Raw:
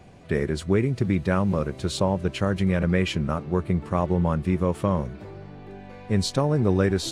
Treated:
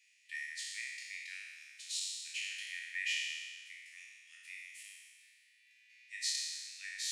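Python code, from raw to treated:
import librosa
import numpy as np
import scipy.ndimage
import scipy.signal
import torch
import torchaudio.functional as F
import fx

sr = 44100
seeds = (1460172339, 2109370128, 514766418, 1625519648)

y = fx.spec_trails(x, sr, decay_s=1.63)
y = scipy.signal.sosfilt(scipy.signal.cheby1(6, 6, 1800.0, 'highpass', fs=sr, output='sos'), y)
y = F.gain(torch.from_numpy(y), -6.0).numpy()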